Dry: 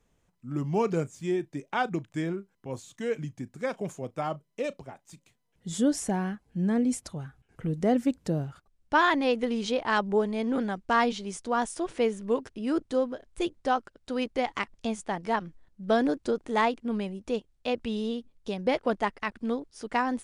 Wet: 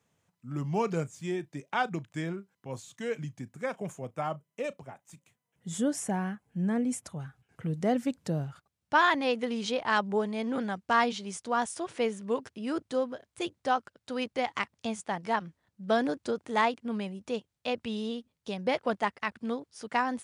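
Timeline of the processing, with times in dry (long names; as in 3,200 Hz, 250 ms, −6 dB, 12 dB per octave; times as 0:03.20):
0:03.52–0:07.20: parametric band 4,400 Hz −7.5 dB
whole clip: high-pass filter 88 Hz 24 dB per octave; parametric band 330 Hz −5.5 dB 1.3 octaves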